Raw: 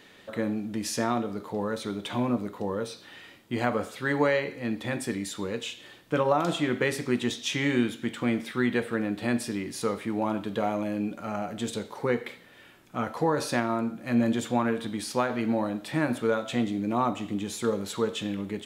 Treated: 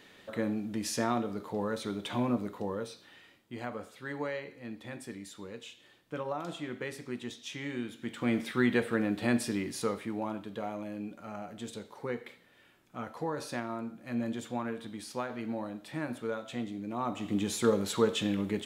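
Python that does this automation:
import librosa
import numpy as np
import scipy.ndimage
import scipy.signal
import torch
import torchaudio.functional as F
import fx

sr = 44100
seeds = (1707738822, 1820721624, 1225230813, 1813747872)

y = fx.gain(x, sr, db=fx.line((2.52, -3.0), (3.53, -12.0), (7.83, -12.0), (8.39, -1.0), (9.63, -1.0), (10.46, -9.5), (16.97, -9.5), (17.38, 1.0)))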